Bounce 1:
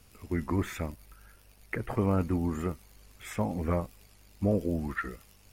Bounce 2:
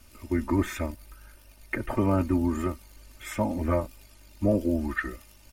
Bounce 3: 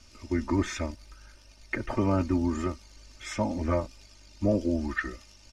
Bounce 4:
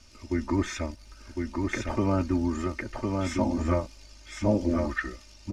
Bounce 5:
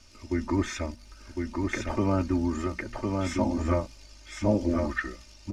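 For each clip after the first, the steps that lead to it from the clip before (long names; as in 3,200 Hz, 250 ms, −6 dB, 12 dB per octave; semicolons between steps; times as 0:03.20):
comb filter 3.3 ms, depth 92%; level +1.5 dB
low-pass with resonance 5,700 Hz, resonance Q 2.8; level −1.5 dB
single-tap delay 1,056 ms −3.5 dB
mains-hum notches 60/120/180/240 Hz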